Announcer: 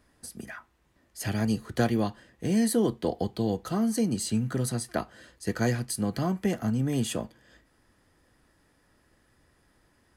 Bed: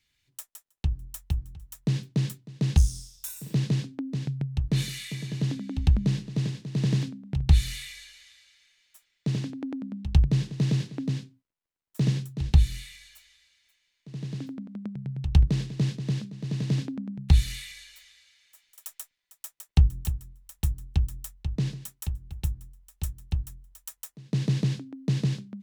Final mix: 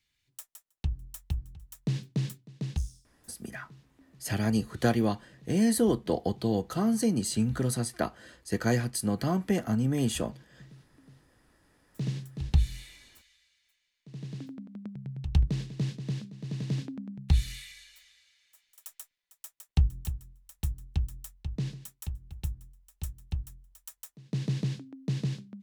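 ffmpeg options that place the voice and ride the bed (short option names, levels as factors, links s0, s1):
-filter_complex "[0:a]adelay=3050,volume=1[s0];[1:a]volume=8.41,afade=t=out:st=2.32:d=0.74:silence=0.0668344,afade=t=in:st=11.24:d=1.19:silence=0.0749894[s1];[s0][s1]amix=inputs=2:normalize=0"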